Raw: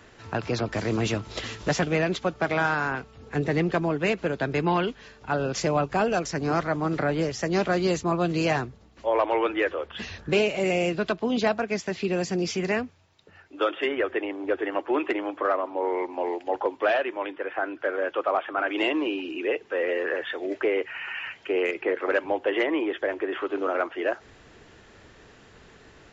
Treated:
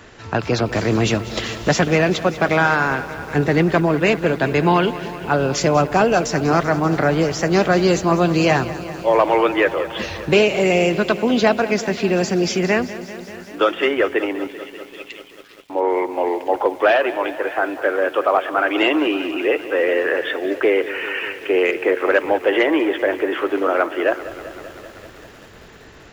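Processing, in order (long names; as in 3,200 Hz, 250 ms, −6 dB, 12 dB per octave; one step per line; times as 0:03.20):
0:14.47–0:15.70: inverse Chebyshev high-pass filter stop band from 940 Hz, stop band 60 dB
feedback echo at a low word length 194 ms, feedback 80%, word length 8 bits, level −15 dB
level +8 dB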